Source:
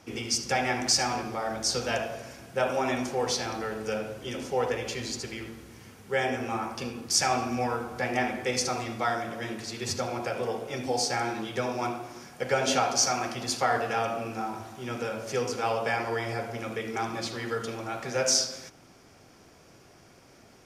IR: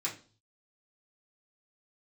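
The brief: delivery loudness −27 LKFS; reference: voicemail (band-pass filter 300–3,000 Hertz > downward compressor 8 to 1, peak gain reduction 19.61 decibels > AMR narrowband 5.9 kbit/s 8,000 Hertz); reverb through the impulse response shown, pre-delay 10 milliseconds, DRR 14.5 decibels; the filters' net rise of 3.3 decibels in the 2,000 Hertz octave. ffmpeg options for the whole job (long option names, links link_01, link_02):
-filter_complex "[0:a]equalizer=frequency=2000:width_type=o:gain=5,asplit=2[link_01][link_02];[1:a]atrim=start_sample=2205,adelay=10[link_03];[link_02][link_03]afir=irnorm=-1:irlink=0,volume=-18dB[link_04];[link_01][link_04]amix=inputs=2:normalize=0,highpass=300,lowpass=3000,acompressor=threshold=-40dB:ratio=8,volume=19dB" -ar 8000 -c:a libopencore_amrnb -b:a 5900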